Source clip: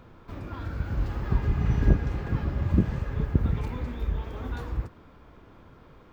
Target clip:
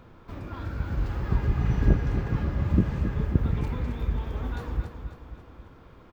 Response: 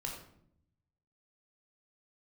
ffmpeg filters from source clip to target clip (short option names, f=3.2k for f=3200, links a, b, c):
-af "aecho=1:1:269|538|807|1076|1345|1614:0.355|0.181|0.0923|0.0471|0.024|0.0122"